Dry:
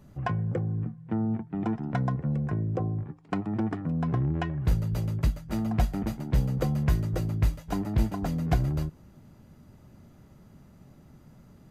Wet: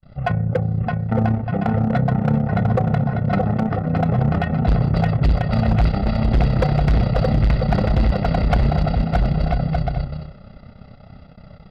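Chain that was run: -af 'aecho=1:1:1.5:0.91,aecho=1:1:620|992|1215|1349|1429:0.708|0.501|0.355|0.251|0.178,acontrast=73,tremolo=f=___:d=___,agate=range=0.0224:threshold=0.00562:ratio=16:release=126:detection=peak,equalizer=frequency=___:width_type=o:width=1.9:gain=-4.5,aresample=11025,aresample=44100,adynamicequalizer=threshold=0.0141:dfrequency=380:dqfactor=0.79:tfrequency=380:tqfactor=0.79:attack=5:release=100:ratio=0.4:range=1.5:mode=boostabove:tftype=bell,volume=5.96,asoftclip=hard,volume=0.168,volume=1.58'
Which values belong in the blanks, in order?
32, 0.621, 110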